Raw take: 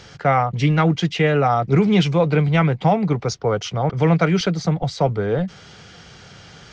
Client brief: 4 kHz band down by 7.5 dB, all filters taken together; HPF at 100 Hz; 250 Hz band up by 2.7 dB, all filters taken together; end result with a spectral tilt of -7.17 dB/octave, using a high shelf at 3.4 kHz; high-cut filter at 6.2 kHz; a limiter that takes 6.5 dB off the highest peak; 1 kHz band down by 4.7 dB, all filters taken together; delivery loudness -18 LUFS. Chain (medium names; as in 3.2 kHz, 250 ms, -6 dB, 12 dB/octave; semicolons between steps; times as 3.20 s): high-pass 100 Hz; low-pass 6.2 kHz; peaking EQ 250 Hz +5.5 dB; peaking EQ 1 kHz -7 dB; treble shelf 3.4 kHz -5 dB; peaking EQ 4 kHz -6 dB; trim +2 dB; peak limiter -8.5 dBFS